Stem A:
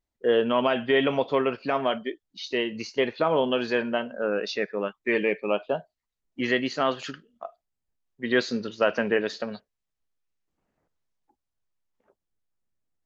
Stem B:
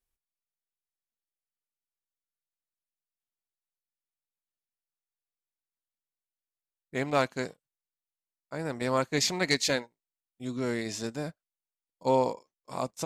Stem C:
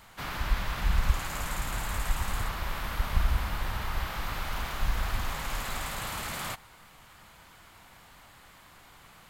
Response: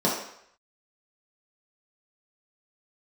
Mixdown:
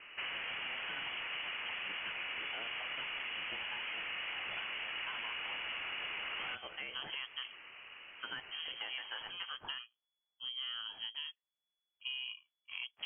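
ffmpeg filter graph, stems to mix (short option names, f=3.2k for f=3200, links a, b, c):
-filter_complex "[0:a]acompressor=threshold=-28dB:ratio=6,crystalizer=i=10:c=0,volume=-15dB,asplit=2[a][b];[1:a]alimiter=limit=-20.5dB:level=0:latency=1:release=30,volume=-5.5dB[c];[2:a]highpass=f=480:t=q:w=4.9,volume=0dB[d];[b]apad=whole_len=575814[e];[c][e]sidechaincompress=threshold=-45dB:ratio=8:attack=6.2:release=121[f];[a][f][d]amix=inputs=3:normalize=0,aeval=exprs='clip(val(0),-1,0.0316)':c=same,lowpass=f=2.9k:t=q:w=0.5098,lowpass=f=2.9k:t=q:w=0.6013,lowpass=f=2.9k:t=q:w=0.9,lowpass=f=2.9k:t=q:w=2.563,afreqshift=-3400,acompressor=threshold=-38dB:ratio=6"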